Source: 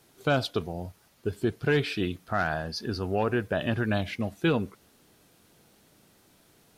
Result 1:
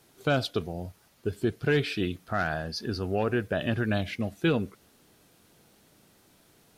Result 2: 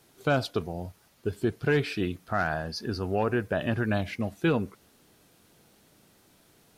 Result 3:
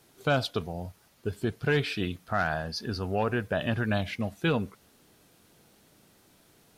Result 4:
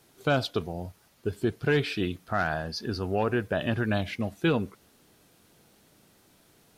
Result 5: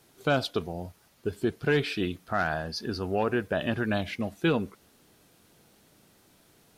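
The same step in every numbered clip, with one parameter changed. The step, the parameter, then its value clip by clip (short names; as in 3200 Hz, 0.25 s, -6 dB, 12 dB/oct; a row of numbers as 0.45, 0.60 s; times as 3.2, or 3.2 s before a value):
dynamic EQ, frequency: 950, 3400, 340, 9700, 110 Hz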